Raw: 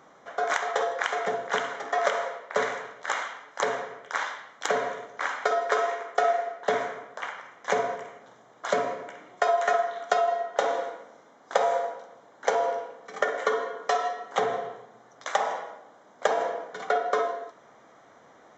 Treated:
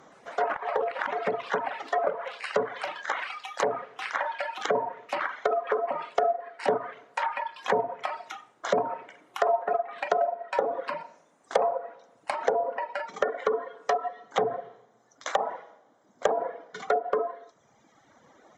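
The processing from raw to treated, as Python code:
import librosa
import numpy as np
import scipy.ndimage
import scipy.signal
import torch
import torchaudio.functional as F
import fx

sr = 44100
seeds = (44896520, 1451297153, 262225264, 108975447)

p1 = fx.echo_pitch(x, sr, ms=120, semitones=5, count=3, db_per_echo=-6.0)
p2 = fx.env_lowpass_down(p1, sr, base_hz=940.0, full_db=-21.0)
p3 = fx.peak_eq(p2, sr, hz=1400.0, db=-3.5, octaves=2.7)
p4 = np.clip(p3, -10.0 ** (-20.0 / 20.0), 10.0 ** (-20.0 / 20.0))
p5 = p3 + (p4 * librosa.db_to_amplitude(-6.0))
y = fx.dereverb_blind(p5, sr, rt60_s=1.7)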